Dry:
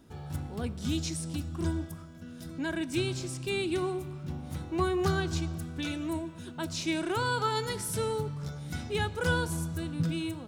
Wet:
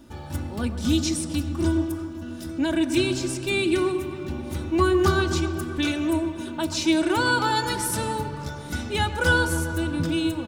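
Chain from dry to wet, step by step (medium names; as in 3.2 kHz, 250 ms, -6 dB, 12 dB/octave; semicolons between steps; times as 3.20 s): comb 3.4 ms, depth 60%; feedback echo behind a low-pass 132 ms, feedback 75%, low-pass 2.2 kHz, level -11 dB; trim +6.5 dB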